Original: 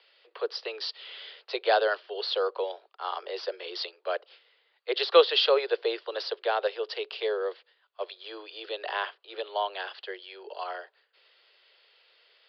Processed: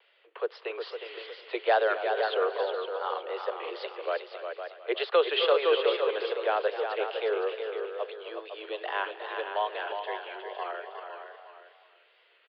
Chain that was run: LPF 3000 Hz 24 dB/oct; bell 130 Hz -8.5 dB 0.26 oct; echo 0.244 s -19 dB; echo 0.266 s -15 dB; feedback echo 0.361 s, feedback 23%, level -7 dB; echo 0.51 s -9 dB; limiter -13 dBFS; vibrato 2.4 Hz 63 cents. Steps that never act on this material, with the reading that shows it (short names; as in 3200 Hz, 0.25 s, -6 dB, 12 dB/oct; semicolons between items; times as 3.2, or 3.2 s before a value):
bell 130 Hz: input band starts at 320 Hz